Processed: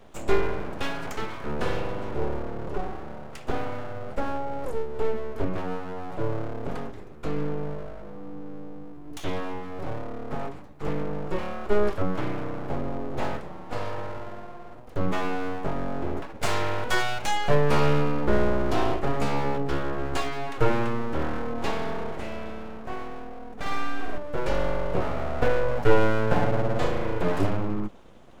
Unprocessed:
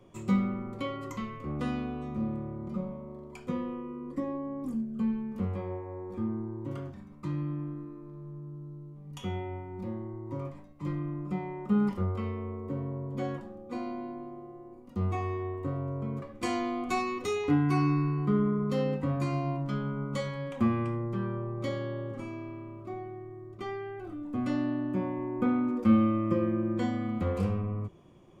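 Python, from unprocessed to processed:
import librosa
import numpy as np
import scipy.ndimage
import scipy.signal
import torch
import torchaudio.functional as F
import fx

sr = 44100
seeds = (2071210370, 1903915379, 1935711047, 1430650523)

y = np.abs(x)
y = fx.room_flutter(y, sr, wall_m=9.0, rt60_s=1.2, at=(23.52, 24.18))
y = F.gain(torch.from_numpy(y), 8.0).numpy()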